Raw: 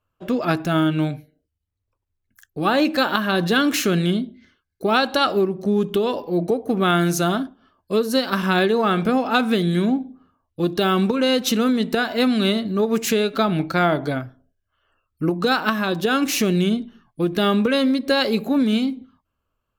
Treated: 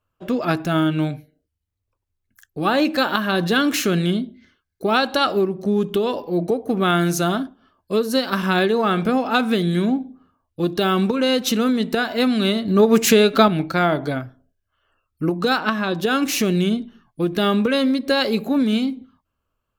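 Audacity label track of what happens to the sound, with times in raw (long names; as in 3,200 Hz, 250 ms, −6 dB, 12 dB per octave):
12.680000	13.480000	clip gain +6 dB
15.580000	16.000000	high-frequency loss of the air 51 metres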